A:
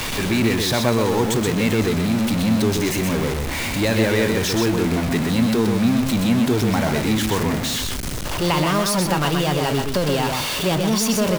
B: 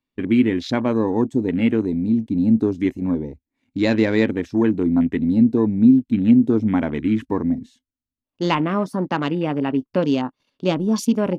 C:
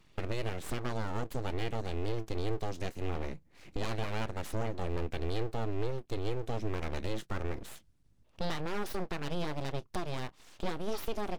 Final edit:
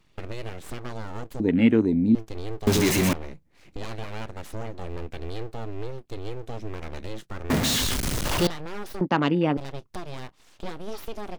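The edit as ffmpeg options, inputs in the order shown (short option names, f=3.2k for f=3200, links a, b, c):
-filter_complex "[1:a]asplit=2[a][b];[0:a]asplit=2[c][d];[2:a]asplit=5[e][f][g][h][i];[e]atrim=end=1.402[j];[a]atrim=start=1.398:end=2.152[k];[f]atrim=start=2.148:end=2.672[l];[c]atrim=start=2.668:end=3.132[m];[g]atrim=start=3.128:end=7.502[n];[d]atrim=start=7.498:end=8.472[o];[h]atrim=start=8.468:end=9.012[p];[b]atrim=start=9.008:end=9.572[q];[i]atrim=start=9.568[r];[j][k]acrossfade=d=0.004:c1=hsin:c2=hsin[s];[s][l]acrossfade=d=0.004:c1=hsin:c2=hsin[t];[t][m]acrossfade=d=0.004:c1=hsin:c2=hsin[u];[u][n]acrossfade=d=0.004:c1=hsin:c2=hsin[v];[v][o]acrossfade=d=0.004:c1=hsin:c2=hsin[w];[w][p]acrossfade=d=0.004:c1=hsin:c2=hsin[x];[x][q]acrossfade=d=0.004:c1=hsin:c2=hsin[y];[y][r]acrossfade=d=0.004:c1=hsin:c2=hsin"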